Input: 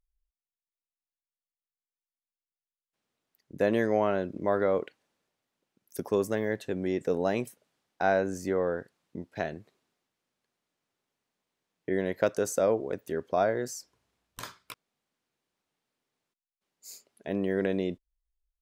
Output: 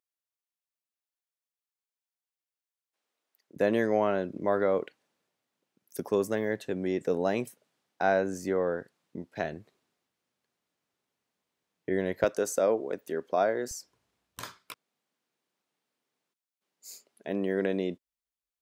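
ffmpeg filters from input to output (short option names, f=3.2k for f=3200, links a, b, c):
-af "asetnsamples=n=441:p=0,asendcmd='3.56 highpass f 110;9.44 highpass f 51;12.24 highpass f 210;13.71 highpass f 70;14.57 highpass f 160',highpass=400"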